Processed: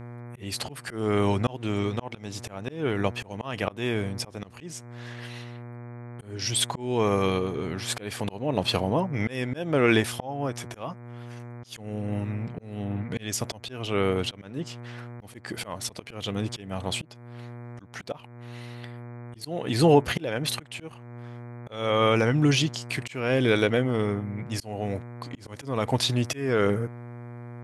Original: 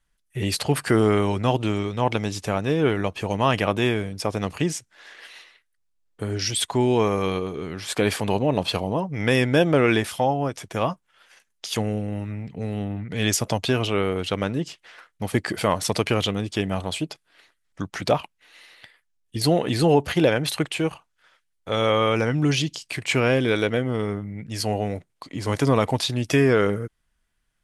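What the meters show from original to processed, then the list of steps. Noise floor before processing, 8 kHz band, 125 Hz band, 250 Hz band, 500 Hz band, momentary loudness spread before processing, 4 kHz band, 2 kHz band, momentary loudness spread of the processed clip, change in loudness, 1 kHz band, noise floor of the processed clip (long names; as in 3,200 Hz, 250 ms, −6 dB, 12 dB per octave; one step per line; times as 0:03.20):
−72 dBFS, −3.5 dB, −3.5 dB, −4.5 dB, −4.5 dB, 12 LU, −3.0 dB, −4.5 dB, 19 LU, −4.0 dB, −5.0 dB, −47 dBFS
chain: hum with harmonics 120 Hz, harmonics 20, −40 dBFS −7 dB per octave
volume swells 379 ms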